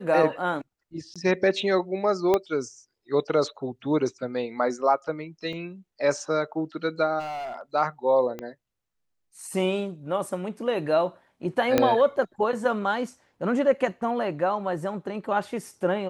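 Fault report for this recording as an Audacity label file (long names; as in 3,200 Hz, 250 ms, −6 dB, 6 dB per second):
1.140000	1.160000	drop-out 16 ms
2.340000	2.340000	click −10 dBFS
5.530000	5.530000	drop-out 2.6 ms
7.190000	7.610000	clipping −30.5 dBFS
8.390000	8.390000	click −21 dBFS
11.780000	11.780000	click −6 dBFS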